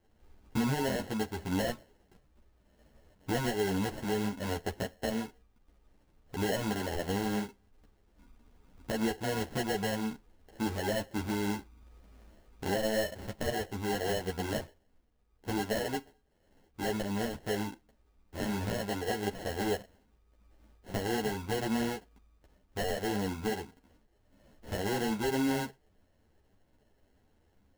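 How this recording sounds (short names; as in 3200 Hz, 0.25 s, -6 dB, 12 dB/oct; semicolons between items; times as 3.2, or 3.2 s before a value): aliases and images of a low sample rate 1200 Hz, jitter 0%; a shimmering, thickened sound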